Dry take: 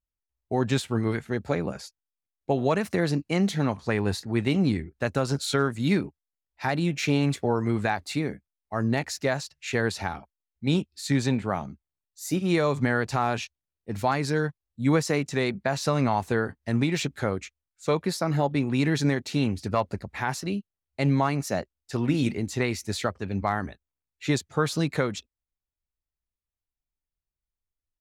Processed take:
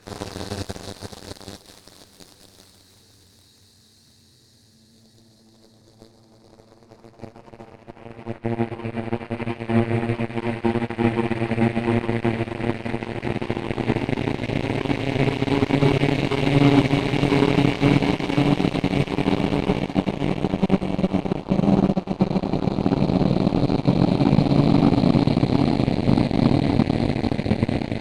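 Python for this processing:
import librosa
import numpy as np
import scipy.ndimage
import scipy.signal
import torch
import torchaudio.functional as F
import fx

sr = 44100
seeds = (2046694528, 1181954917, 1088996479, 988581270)

p1 = fx.paulstretch(x, sr, seeds[0], factor=45.0, window_s=0.25, from_s=4.12)
p2 = 10.0 ** (-19.5 / 20.0) * (np.abs((p1 / 10.0 ** (-19.5 / 20.0) + 3.0) % 4.0 - 2.0) - 1.0)
p3 = p1 + F.gain(torch.from_numpy(p2), -12.0).numpy()
p4 = fx.room_shoebox(p3, sr, seeds[1], volume_m3=290.0, walls='mixed', distance_m=4.0)
p5 = fx.cheby_harmonics(p4, sr, harmonics=(3, 4, 7, 8), levels_db=(-23, -28, -18, -45), full_scale_db=5.0)
y = F.gain(torch.from_numpy(p5), -8.0).numpy()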